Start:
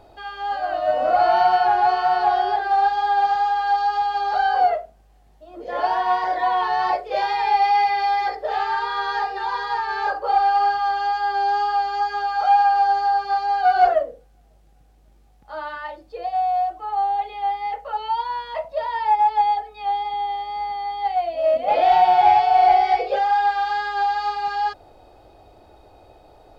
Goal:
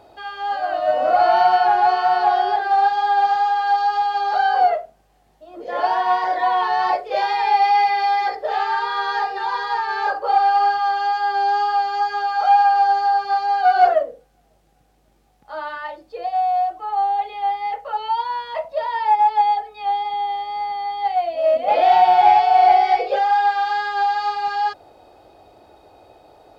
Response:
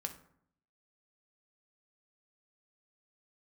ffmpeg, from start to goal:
-af "highpass=frequency=170:poles=1,volume=2dB"

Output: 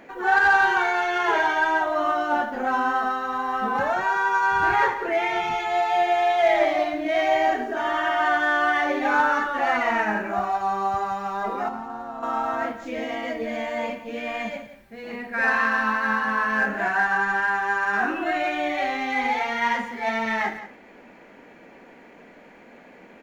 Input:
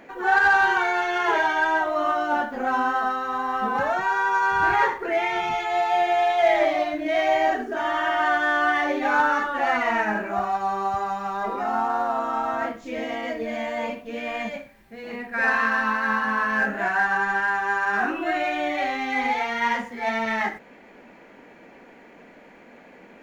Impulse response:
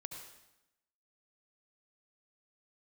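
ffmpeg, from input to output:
-filter_complex "[0:a]asettb=1/sr,asplit=3[link_01][link_02][link_03];[link_01]atrim=end=11.684[link_04];[link_02]atrim=start=11.68:end=12.23,asetpts=PTS-STARTPTS,afade=type=in:duration=0.004:curve=qsin,afade=type=out:start_time=0.546:duration=0.004:curve=qsin,acrossover=split=250[link_05][link_06];[link_06]acompressor=threshold=-33dB:ratio=6[link_07];[link_05][link_07]amix=inputs=2:normalize=0[link_08];[link_03]atrim=start=12.226[link_09];[link_04][link_08]acrossfade=duration=0.004:curve1=hsin:curve2=qsin[link_10];[link_10][link_09]acrossfade=duration=0.004:curve1=qsin:curve2=hsin,asplit=2[link_11][link_12];[link_12]aecho=0:1:174:0.211[link_13];[link_11][link_13]amix=inputs=2:normalize=0"

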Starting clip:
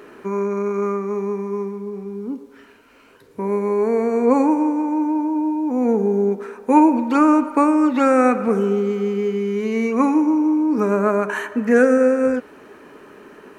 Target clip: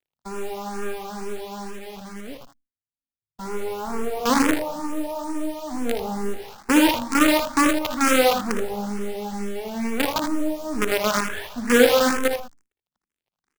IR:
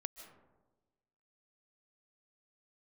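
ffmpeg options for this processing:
-filter_complex "[0:a]acrossover=split=170[link_01][link_02];[link_02]acrusher=bits=3:dc=4:mix=0:aa=0.000001[link_03];[link_01][link_03]amix=inputs=2:normalize=0,agate=range=-33dB:threshold=-33dB:ratio=3:detection=peak,lowshelf=frequency=340:gain=-3,asplit=2[link_04][link_05];[link_05]aecho=0:1:58|79:0.316|0.398[link_06];[link_04][link_06]amix=inputs=2:normalize=0,asplit=2[link_07][link_08];[link_08]afreqshift=2.2[link_09];[link_07][link_09]amix=inputs=2:normalize=1,volume=-1dB"

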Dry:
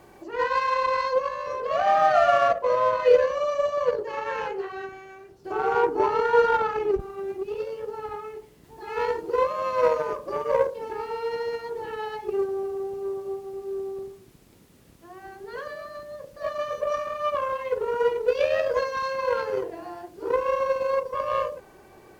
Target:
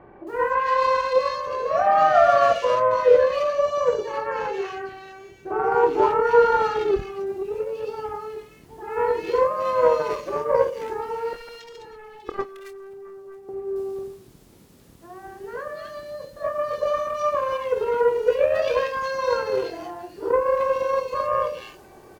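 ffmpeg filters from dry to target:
ffmpeg -i in.wav -filter_complex "[0:a]asettb=1/sr,asplit=3[link_01][link_02][link_03];[link_01]atrim=end=11.334[link_04];[link_02]atrim=start=11.33:end=13.49,asetpts=PTS-STARTPTS,afade=type=in:duration=0.004:curve=qsin,afade=type=out:start_time=2.156:duration=0.004:curve=qsin,aeval=exprs='0.15*(cos(1*acos(clip(val(0)/0.15,-1,1)))-cos(1*PI/2))+0.0668*(cos(3*acos(clip(val(0)/0.15,-1,1)))-cos(3*PI/2))':channel_layout=same[link_05];[link_03]atrim=start=13.486[link_06];[link_04][link_05]acrossfade=duration=0.004:curve1=hsin:curve2=qsin[link_07];[link_07][link_06]acrossfade=duration=0.004:curve1=qsin:curve2=hsin,asplit=2[link_08][link_09];[link_09]adelay=25,volume=-11dB[link_10];[link_08][link_10]amix=inputs=2:normalize=0,acrossover=split=2200[link_11][link_12];[link_12]adelay=270[link_13];[link_11][link_13]amix=inputs=2:normalize=0,volume=3dB" out.wav

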